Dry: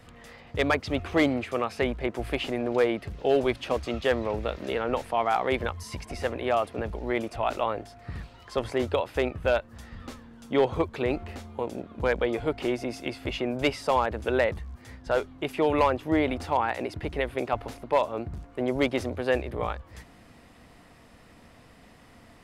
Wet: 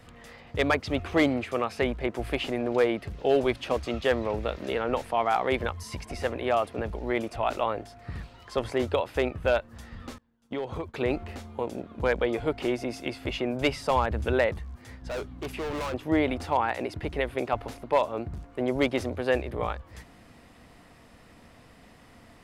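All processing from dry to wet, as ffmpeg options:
-filter_complex "[0:a]asettb=1/sr,asplit=3[s0][s1][s2];[s0]atrim=end=10.184[s3];[s1]atrim=start=10.18:end=10.94,asetpts=PTS-STARTPTS,afade=t=in:d=0.004:c=qsin,afade=t=out:st=0.756:d=0.004:c=qsin,agate=range=0.0224:threshold=0.0178:ratio=3:release=100:detection=peak,acompressor=threshold=0.0316:ratio=4:attack=3.2:release=140:knee=1:detection=peak[s4];[s2]atrim=start=10.936[s5];[s3][s4]acrossfade=d=0.004:c1=hsin:c2=qsin[s6];[s6][s5]acrossfade=d=0.004:c1=qsin:c2=hsin,asettb=1/sr,asplit=3[s7][s8][s9];[s7]atrim=end=13.514[s10];[s8]atrim=start=13.51:end=14.33,asetpts=PTS-STARTPTS,afade=t=in:d=0.004:c=qsin,afade=t=out:st=0.816:d=0.004:c=qsin,bandreject=f=50:t=h:w=6,bandreject=f=100:t=h:w=6,bandreject=f=150:t=h:w=6,asubboost=boost=8:cutoff=230[s11];[s9]atrim=start=14.326[s12];[s10][s11]acrossfade=d=0.004:c1=hsin:c2=qsin[s13];[s13][s12]acrossfade=d=0.004:c1=qsin:c2=hsin,asettb=1/sr,asplit=3[s14][s15][s16];[s14]atrim=end=15.024[s17];[s15]atrim=start=15.02:end=15.94,asetpts=PTS-STARTPTS,afade=t=in:d=0.004:c=qsin,afade=t=out:st=0.916:d=0.004:c=qsin,volume=33.5,asoftclip=hard,volume=0.0299,aeval=exprs='val(0)+0.00794*(sin(2*PI*60*n/s)+sin(2*PI*2*60*n/s)/2+sin(2*PI*3*60*n/s)/3+sin(2*PI*4*60*n/s)/4+sin(2*PI*5*60*n/s)/5)':c=same[s18];[s16]atrim=start=15.936[s19];[s17][s18]acrossfade=d=0.004:c1=hsin:c2=qsin[s20];[s20][s19]acrossfade=d=0.004:c1=qsin:c2=hsin"

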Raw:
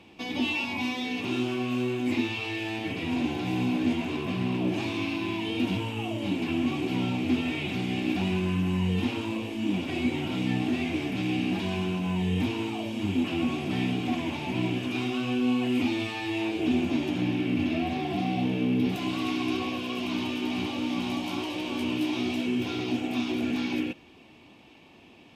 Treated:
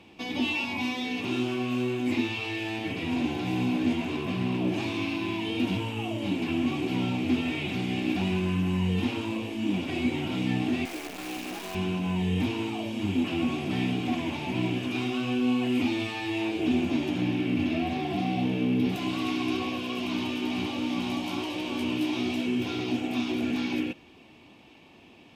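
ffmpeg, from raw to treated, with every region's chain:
-filter_complex "[0:a]asettb=1/sr,asplit=3[s0][s1][s2];[s0]atrim=end=10.854[s3];[s1]atrim=start=10.85:end=11.75,asetpts=PTS-STARTPTS,afade=t=in:d=0.004:c=qsin,afade=t=out:st=0.896:d=0.004:c=qsin,highpass=480,lowpass=6600,highshelf=f=2100:g=-8.5,acrusher=bits=7:dc=4:mix=0:aa=0.000001[s4];[s2]atrim=start=11.746[s5];[s3][s4]acrossfade=d=0.004:c1=hsin:c2=qsin[s6];[s6][s5]acrossfade=d=0.004:c1=qsin:c2=hsin"

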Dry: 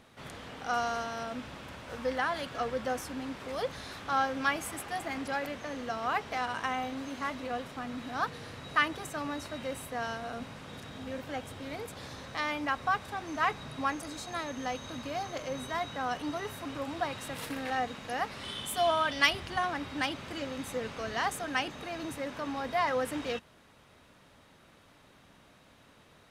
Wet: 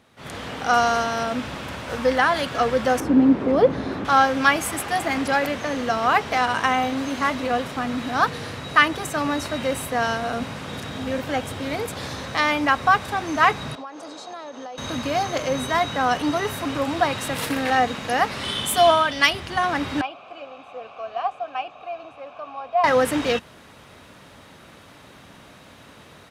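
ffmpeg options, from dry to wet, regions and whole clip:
-filter_complex "[0:a]asettb=1/sr,asplit=3[s0][s1][s2];[s0]atrim=end=3.004[s3];[s1]atrim=start=3:end=4.05,asetpts=PTS-STARTPTS,afade=t=in:d=0.004:c=qsin,afade=t=out:st=1.046:d=0.004:c=qsin,lowpass=f=1200:p=1,equalizer=f=290:t=o:w=1.7:g=12[s4];[s2]atrim=start=4.046[s5];[s3][s4]acrossfade=d=0.004:c1=hsin:c2=qsin[s6];[s6][s5]acrossfade=d=0.004:c1=qsin:c2=hsin,asettb=1/sr,asplit=3[s7][s8][s9];[s7]atrim=end=13.754[s10];[s8]atrim=start=13.75:end=14.78,asetpts=PTS-STARTPTS,afade=t=in:d=0.004:c=qsin,afade=t=out:st=1.026:d=0.004:c=qsin,highpass=510,lowpass=3800,equalizer=f=2100:t=o:w=1.7:g=-13.5,acompressor=threshold=0.00631:ratio=10:attack=3.2:release=140:knee=1:detection=peak[s11];[s9]atrim=start=14.776[s12];[s10][s11]acrossfade=d=0.004:c1=hsin:c2=qsin[s13];[s13][s12]acrossfade=d=0.004:c1=qsin:c2=hsin,asettb=1/sr,asplit=3[s14][s15][s16];[s14]atrim=end=20.014[s17];[s15]atrim=start=20.01:end=22.84,asetpts=PTS-STARTPTS,afade=t=in:d=0.004:c=qsin,afade=t=out:st=2.826:d=0.004:c=qsin,acrossover=split=5200[s18][s19];[s19]acompressor=threshold=0.00251:ratio=4:attack=1:release=60[s20];[s18][s20]amix=inputs=2:normalize=0,asubboost=boost=7:cutoff=110,asplit=3[s21][s22][s23];[s21]bandpass=f=730:t=q:w=8,volume=1[s24];[s22]bandpass=f=1090:t=q:w=8,volume=0.501[s25];[s23]bandpass=f=2440:t=q:w=8,volume=0.355[s26];[s24][s25][s26]amix=inputs=3:normalize=0[s27];[s16]atrim=start=22.836[s28];[s17][s27]acrossfade=d=0.004:c1=hsin:c2=qsin[s29];[s29][s28]acrossfade=d=0.004:c1=qsin:c2=hsin,highpass=49,dynaudnorm=f=180:g=3:m=4.22"

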